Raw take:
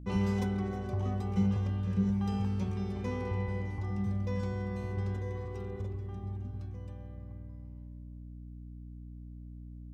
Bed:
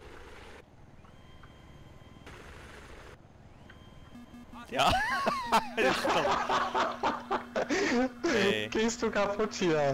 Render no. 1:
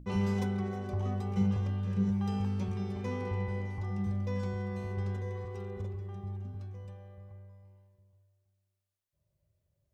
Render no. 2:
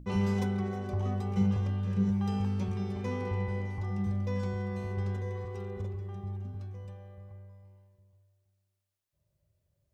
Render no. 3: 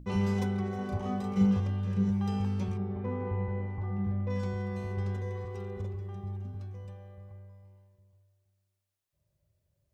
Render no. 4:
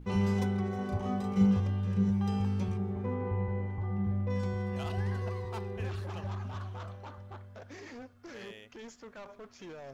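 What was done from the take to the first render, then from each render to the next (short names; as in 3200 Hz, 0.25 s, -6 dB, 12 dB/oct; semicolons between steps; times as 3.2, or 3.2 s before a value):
notches 60/120/180/240/300/360 Hz
gain +1.5 dB
0.75–1.6 doubler 36 ms -3 dB; 2.76–4.29 LPF 1300 Hz -> 2100 Hz
add bed -18.5 dB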